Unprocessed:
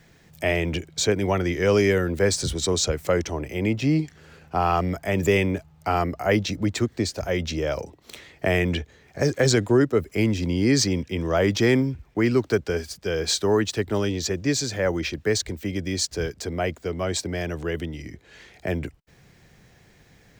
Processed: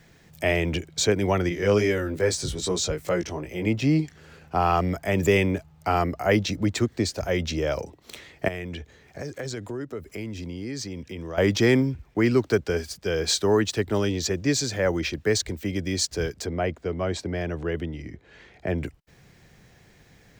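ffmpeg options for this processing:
-filter_complex "[0:a]asettb=1/sr,asplit=3[a][b][c];[a]atrim=end=1.494[d];[b]atrim=start=1.49:end=3.67,asetpts=PTS-STARTPTS,afade=t=in:d=0.004:c=qsin,afade=t=out:st=2.176:d=0.004:c=qsin,flanger=delay=17:depth=2.8:speed=2.4[e];[c]atrim=start=3.666[f];[d][e]acrossfade=d=0.004:c1=hsin:c2=qsin[g];[g][f]acrossfade=d=0.004:c1=qsin:c2=hsin,asettb=1/sr,asplit=3[h][i][j];[h]atrim=end=8.484[k];[i]atrim=start=8.48:end=11.38,asetpts=PTS-STARTPTS,afade=t=in:d=0.004:c=qsin,afade=t=out:st=2.896:d=0.004:c=qsin,acompressor=threshold=-34dB:ratio=3:attack=3.2:release=140:knee=1:detection=peak[l];[j]atrim=start=11.376[m];[k][l]acrossfade=d=0.004:c1=hsin:c2=qsin[n];[n][m]acrossfade=d=0.004:c1=qsin:c2=hsin,asettb=1/sr,asplit=3[o][p][q];[o]atrim=end=16.464[r];[p]atrim=start=16.46:end=18.78,asetpts=PTS-STARTPTS,afade=t=in:d=0.004:c=qsin,afade=t=out:st=2.316:d=0.004:c=qsin,lowpass=f=2.2k:p=1[s];[q]atrim=start=18.776[t];[r][s]acrossfade=d=0.004:c1=hsin:c2=qsin[u];[u][t]acrossfade=d=0.004:c1=qsin:c2=hsin"

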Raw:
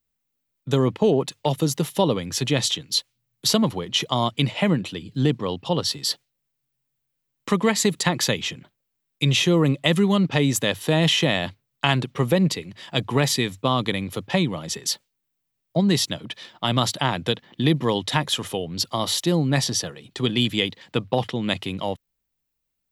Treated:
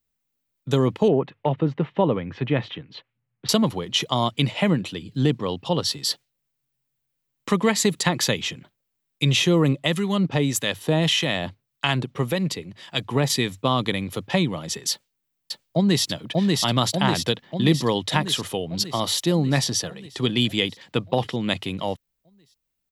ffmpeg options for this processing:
-filter_complex "[0:a]asettb=1/sr,asplit=3[a][b][c];[a]atrim=end=1.084[d];[b]atrim=start=1.08:end=3.49,asetpts=PTS-STARTPTS,afade=t=in:d=0.004:c=qsin,afade=t=out:st=2.406:d=0.004:c=qsin,lowpass=f=2.4k:w=0.5412,lowpass=f=2.4k:w=1.3066[e];[c]atrim=start=3.486[f];[d][e]acrossfade=d=0.004:c1=hsin:c2=qsin[g];[g][f]acrossfade=d=0.004:c1=qsin:c2=hsin,asettb=1/sr,asplit=3[h][i][j];[h]atrim=end=9.734[k];[i]atrim=start=9.73:end=13.3,asetpts=PTS-STARTPTS,afade=t=in:d=0.004:c=qsin,afade=t=out:st=3.566:d=0.004:c=qsin,acrossover=split=1100[l][m];[l]aeval=exprs='val(0)*(1-0.5/2+0.5/2*cos(2*PI*1.7*n/s))':c=same[n];[m]aeval=exprs='val(0)*(1-0.5/2-0.5/2*cos(2*PI*1.7*n/s))':c=same[o];[n][o]amix=inputs=2:normalize=0[p];[j]atrim=start=13.296[q];[k][p]acrossfade=d=0.004:c1=hsin:c2=qsin[r];[r][q]acrossfade=d=0.004:c1=qsin:c2=hsin,asplit=2[s][t];[t]afade=t=in:st=14.91:d=0.01,afade=t=out:st=16.07:d=0.01,aecho=0:1:590|1180|1770|2360|2950|3540|4130|4720|5310|5900|6490:0.841395|0.546907|0.355489|0.231068|0.150194|0.0976263|0.0634571|0.0412471|0.0268106|0.0174269|0.0113275[u];[s][u]amix=inputs=2:normalize=0"

